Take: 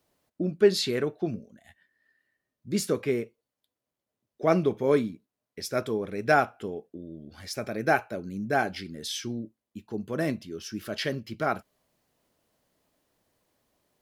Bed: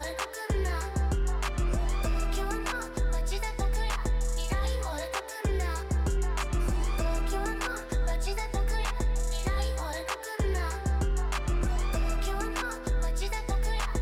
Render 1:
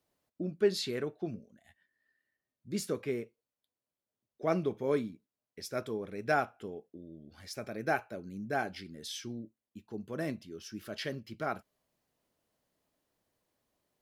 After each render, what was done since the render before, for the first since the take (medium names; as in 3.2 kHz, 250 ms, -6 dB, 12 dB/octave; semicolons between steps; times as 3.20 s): trim -7.5 dB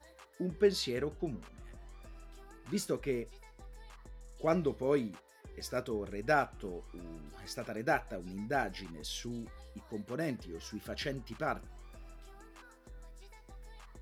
add bed -23.5 dB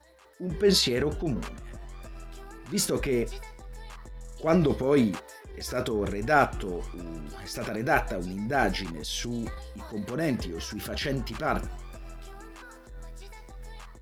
level rider gain up to 9 dB; transient shaper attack -7 dB, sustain +7 dB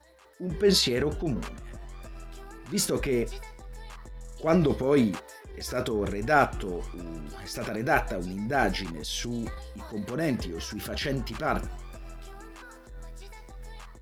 no audible change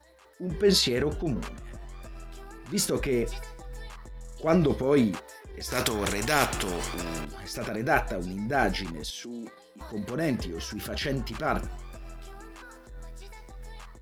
3.23–3.88 s: comb 6.2 ms, depth 89%; 5.72–7.25 s: spectrum-flattening compressor 2:1; 9.10–9.81 s: ladder high-pass 200 Hz, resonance 30%